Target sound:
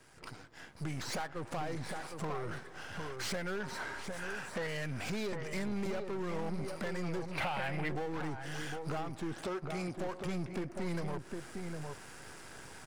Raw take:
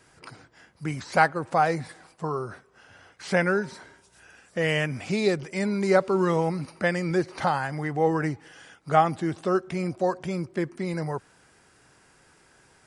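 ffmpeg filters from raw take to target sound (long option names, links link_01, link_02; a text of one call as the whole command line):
ffmpeg -i in.wav -filter_complex "[0:a]aeval=exprs='if(lt(val(0),0),0.251*val(0),val(0))':channel_layout=same,asettb=1/sr,asplit=3[link_01][link_02][link_03];[link_01]atrim=end=3.604[link_04];[link_02]atrim=start=3.6:end=4.67,asetpts=PTS-STARTPTS,afade=type=in:duration=0.004:curve=qsin,afade=type=out:start_time=1.066:duration=0.004:curve=qsin,equalizer=frequency=1200:width=0.61:gain=6.5[link_05];[link_03]atrim=start=4.666[link_06];[link_04][link_05]acrossfade=duration=0.004:curve1=hsin:curve2=qsin[link_07];[link_07][link_06]acrossfade=duration=0.004:curve1=qsin:curve2=hsin,acompressor=threshold=-39dB:ratio=16,asettb=1/sr,asplit=3[link_08][link_09][link_10];[link_08]atrim=end=9.334[link_11];[link_09]atrim=start=9.33:end=9.99,asetpts=PTS-STARTPTS,afade=type=in:duration=0.004:curve=qsin,afade=type=out:start_time=0.656:duration=0.004:curve=qsin,highpass=frequency=210:poles=1[link_12];[link_10]atrim=start=9.986[link_13];[link_11][link_12]acrossfade=duration=0.004:curve1=hsin:curve2=qsin[link_14];[link_14][link_13]acrossfade=duration=0.004:curve1=qsin:curve2=hsin,asplit=2[link_15][link_16];[link_16]adelay=758,volume=-8dB,highshelf=frequency=4000:gain=-17.1[link_17];[link_15][link_17]amix=inputs=2:normalize=0,dynaudnorm=framelen=470:gausssize=3:maxgain=11dB,asoftclip=type=tanh:threshold=-32dB,asettb=1/sr,asplit=3[link_18][link_19][link_20];[link_18]atrim=end=7.314[link_21];[link_19]atrim=start=7.31:end=7.89,asetpts=PTS-STARTPTS,afade=type=in:duration=0.004:curve=qsin,afade=type=out:start_time=0.576:duration=0.004:curve=qsin,equalizer=frequency=630:width_type=o:width=0.67:gain=4,equalizer=frequency=2500:width_type=o:width=0.67:gain=12,equalizer=frequency=6300:width_type=o:width=0.67:gain=-6[link_22];[link_20]atrim=start=7.886[link_23];[link_21][link_22]acrossfade=duration=0.004:curve1=hsin:curve2=qsin[link_24];[link_24][link_23]acrossfade=duration=0.004:curve1=qsin:curve2=hsin" out.wav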